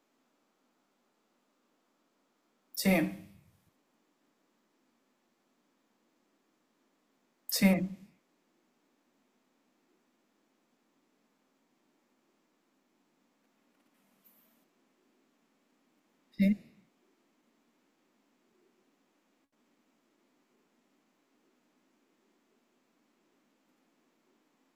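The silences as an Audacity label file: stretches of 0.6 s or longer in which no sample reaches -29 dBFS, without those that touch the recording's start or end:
3.080000	7.490000	silence
7.850000	16.400000	silence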